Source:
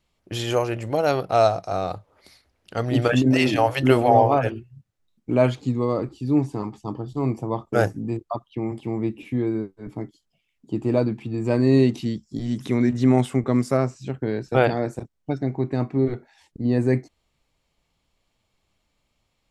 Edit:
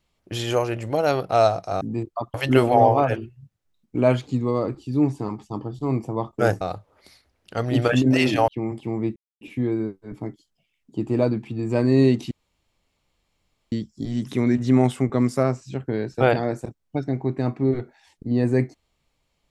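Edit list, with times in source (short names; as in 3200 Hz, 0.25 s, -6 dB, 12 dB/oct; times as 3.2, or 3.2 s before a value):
1.81–3.68 swap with 7.95–8.48
9.16 insert silence 0.25 s
12.06 insert room tone 1.41 s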